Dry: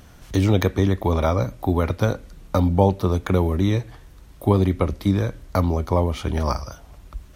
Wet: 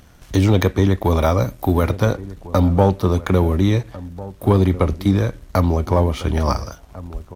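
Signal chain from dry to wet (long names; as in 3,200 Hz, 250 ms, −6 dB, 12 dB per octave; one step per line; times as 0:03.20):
0:01.05–0:01.91: high-shelf EQ 8,800 Hz +9.5 dB
leveller curve on the samples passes 1
slap from a distant wall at 240 metres, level −17 dB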